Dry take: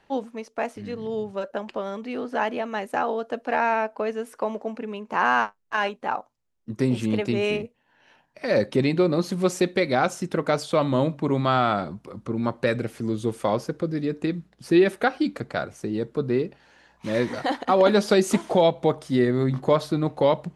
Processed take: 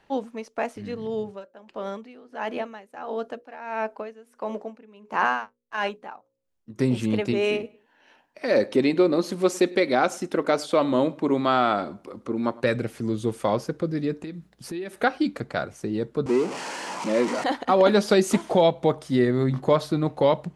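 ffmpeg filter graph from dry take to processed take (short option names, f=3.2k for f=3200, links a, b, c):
-filter_complex "[0:a]asettb=1/sr,asplit=3[a][b][c];[a]atrim=end=1.224[d];[b]atrim=start=1.22:end=6.76,asetpts=PTS-STARTPTS,afade=t=in:d=0.004:c=qsin,afade=t=out:st=5.536:d=0.004:c=qsin,bandreject=f=60:t=h:w=6,bandreject=f=120:t=h:w=6,bandreject=f=180:t=h:w=6,bandreject=f=240:t=h:w=6,bandreject=f=300:t=h:w=6,bandreject=f=360:t=h:w=6,bandreject=f=420:t=h:w=6,bandreject=f=480:t=h:w=6,bandreject=f=540:t=h:w=6,aeval=exprs='val(0)*pow(10,-18*(0.5-0.5*cos(2*PI*1.5*n/s))/20)':c=same[e];[c]atrim=start=6.756[f];[d][e]acrossfade=d=0.004:c1=hsin:c2=qsin[g];[g][f]acrossfade=d=0.004:c1=qsin:c2=hsin,asettb=1/sr,asplit=3[h][i][j];[h]atrim=end=7.334[k];[i]atrim=start=7.33:end=12.64,asetpts=PTS-STARTPTS,afade=t=in:d=0.004:c=qsin,afade=t=out:st=5.306:d=0.004:c=qsin,lowshelf=f=200:t=q:w=1.5:g=-8,asplit=2[l][m];[m]adelay=102,lowpass=f=3.8k:p=1,volume=-22.5dB,asplit=2[n][o];[o]adelay=102,lowpass=f=3.8k:p=1,volume=0.29[p];[l][n][p]amix=inputs=3:normalize=0,atrim=end_sample=234171[q];[j]atrim=start=12.636[r];[k][q]acrossfade=d=0.004:c1=hsin:c2=qsin[s];[s][r]acrossfade=d=0.004:c1=qsin:c2=hsin,asettb=1/sr,asplit=3[t][u][v];[t]atrim=end=14.234[w];[u]atrim=start=14.23:end=15.01,asetpts=PTS-STARTPTS,afade=t=in:d=0.004:c=qsin,afade=t=out:st=0.776:d=0.004:c=qsin,highshelf=f=7.4k:g=6.5,acompressor=threshold=-35dB:ratio=3:attack=3.2:release=140:knee=1:detection=peak[x];[v]atrim=start=15.006[y];[w][x]acrossfade=d=0.004:c1=hsin:c2=qsin[z];[z][y]acrossfade=d=0.004:c1=qsin:c2=hsin,asettb=1/sr,asplit=3[aa][ab][ac];[aa]atrim=end=16.264[ad];[ab]atrim=start=16.26:end=17.44,asetpts=PTS-STARTPTS,afade=t=in:d=0.004:c=qsin,afade=t=out:st=1.176:d=0.004:c=qsin,aeval=exprs='val(0)+0.5*0.0473*sgn(val(0))':c=same,highpass=f=200:w=0.5412,highpass=f=200:w=1.3066,equalizer=f=970:t=q:w=4:g=5,equalizer=f=1.7k:t=q:w=4:g=-6,equalizer=f=3.7k:t=q:w=4:g=-8,lowpass=f=8.8k:w=0.5412,lowpass=f=8.8k:w=1.3066[ae];[ac]atrim=start=17.436[af];[ad][ae]acrossfade=d=0.004:c1=hsin:c2=qsin[ag];[ag][af]acrossfade=d=0.004:c1=qsin:c2=hsin"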